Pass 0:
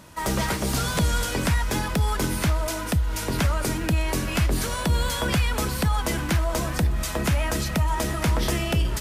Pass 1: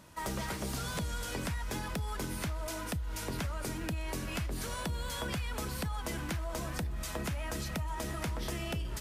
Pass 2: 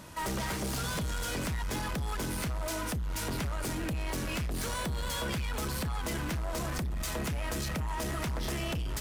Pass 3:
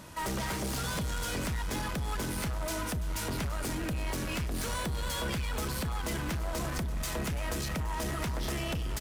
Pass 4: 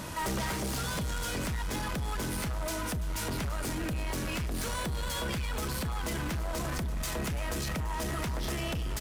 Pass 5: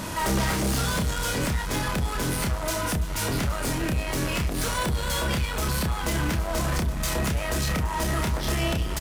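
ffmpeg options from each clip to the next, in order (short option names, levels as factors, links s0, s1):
-af "acompressor=threshold=0.0631:ratio=6,volume=0.376"
-af "asoftclip=type=tanh:threshold=0.0126,volume=2.51"
-af "aecho=1:1:336|672|1008|1344|1680|2016:0.168|0.101|0.0604|0.0363|0.0218|0.0131"
-af "alimiter=level_in=4.73:limit=0.0631:level=0:latency=1,volume=0.211,volume=2.82"
-filter_complex "[0:a]asplit=2[s0][s1];[s1]adelay=30,volume=0.562[s2];[s0][s2]amix=inputs=2:normalize=0,volume=2"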